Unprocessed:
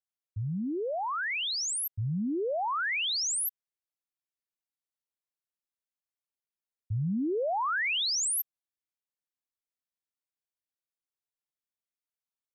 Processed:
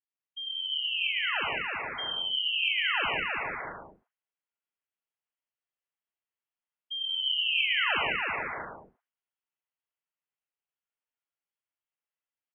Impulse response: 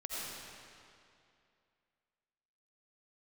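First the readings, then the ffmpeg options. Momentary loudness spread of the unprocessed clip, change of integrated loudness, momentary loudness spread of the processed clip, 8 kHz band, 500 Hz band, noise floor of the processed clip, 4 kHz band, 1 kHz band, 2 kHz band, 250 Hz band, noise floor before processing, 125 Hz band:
7 LU, +1.5 dB, 14 LU, under -40 dB, -7.5 dB, under -85 dBFS, +6.0 dB, -1.5 dB, +5.0 dB, -15.5 dB, under -85 dBFS, -18.0 dB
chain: -filter_complex "[1:a]atrim=start_sample=2205,afade=t=out:st=0.25:d=0.01,atrim=end_sample=11466[s0];[0:a][s0]afir=irnorm=-1:irlink=0,lowpass=f=2800:t=q:w=0.5098,lowpass=f=2800:t=q:w=0.6013,lowpass=f=2800:t=q:w=0.9,lowpass=f=2800:t=q:w=2.563,afreqshift=-3300,aecho=1:1:320|512|627.2|696.3|737.8:0.631|0.398|0.251|0.158|0.1"

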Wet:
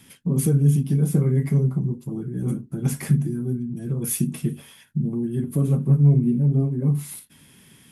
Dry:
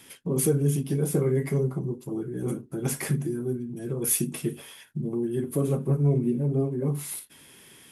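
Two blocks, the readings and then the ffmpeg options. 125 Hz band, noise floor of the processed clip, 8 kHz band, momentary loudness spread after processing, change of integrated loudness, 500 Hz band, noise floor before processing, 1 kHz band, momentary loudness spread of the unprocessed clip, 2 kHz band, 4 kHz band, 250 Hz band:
+7.5 dB, -53 dBFS, -2.0 dB, 11 LU, +5.0 dB, -3.5 dB, -52 dBFS, no reading, 10 LU, -2.0 dB, -2.0 dB, +5.0 dB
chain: -af "lowshelf=f=280:t=q:w=1.5:g=8,volume=0.794"

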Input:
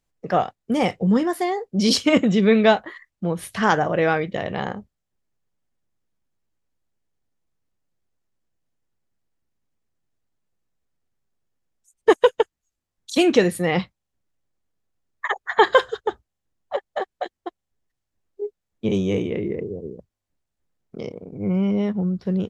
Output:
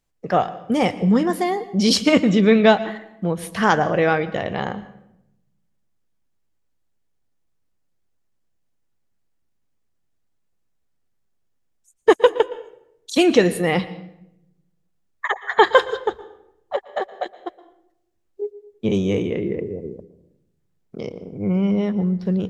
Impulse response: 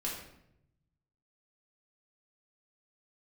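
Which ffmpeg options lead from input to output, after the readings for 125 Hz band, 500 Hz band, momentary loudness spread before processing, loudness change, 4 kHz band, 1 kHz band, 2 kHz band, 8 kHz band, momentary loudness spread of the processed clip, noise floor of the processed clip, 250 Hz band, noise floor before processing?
+1.5 dB, +1.5 dB, 17 LU, +1.5 dB, +1.5 dB, +1.5 dB, +1.5 dB, +1.5 dB, 17 LU, -68 dBFS, +2.0 dB, -82 dBFS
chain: -filter_complex "[0:a]asplit=2[s0][s1];[1:a]atrim=start_sample=2205,adelay=116[s2];[s1][s2]afir=irnorm=-1:irlink=0,volume=0.119[s3];[s0][s3]amix=inputs=2:normalize=0,volume=1.19"

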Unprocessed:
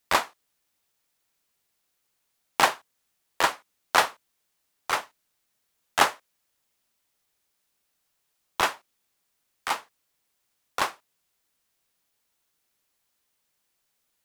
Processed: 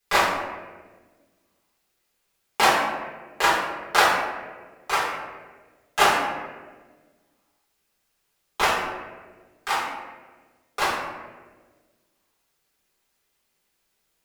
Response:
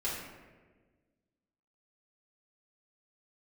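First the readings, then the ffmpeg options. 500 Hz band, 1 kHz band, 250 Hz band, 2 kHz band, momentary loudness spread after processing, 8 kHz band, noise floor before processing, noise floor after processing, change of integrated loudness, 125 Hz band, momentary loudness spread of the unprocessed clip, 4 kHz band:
+5.5 dB, +4.5 dB, +6.5 dB, +5.0 dB, 20 LU, +2.0 dB, -76 dBFS, -73 dBFS, +3.0 dB, +6.0 dB, 14 LU, +3.5 dB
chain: -filter_complex "[1:a]atrim=start_sample=2205[s0];[0:a][s0]afir=irnorm=-1:irlink=0"

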